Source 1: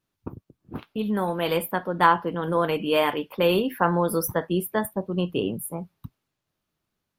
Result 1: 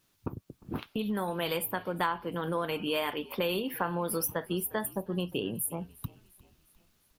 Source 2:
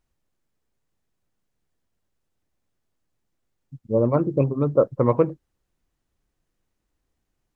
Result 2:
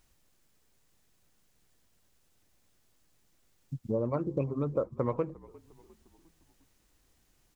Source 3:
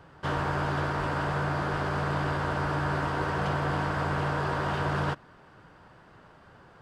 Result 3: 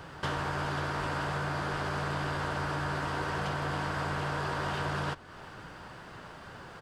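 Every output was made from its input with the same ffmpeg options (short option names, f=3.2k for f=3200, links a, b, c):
-filter_complex "[0:a]highshelf=f=2.3k:g=8,acompressor=threshold=-40dB:ratio=3,asplit=2[a][b];[b]asplit=4[c][d][e][f];[c]adelay=353,afreqshift=-53,volume=-22.5dB[g];[d]adelay=706,afreqshift=-106,volume=-28.2dB[h];[e]adelay=1059,afreqshift=-159,volume=-33.9dB[i];[f]adelay=1412,afreqshift=-212,volume=-39.5dB[j];[g][h][i][j]amix=inputs=4:normalize=0[k];[a][k]amix=inputs=2:normalize=0,volume=6dB"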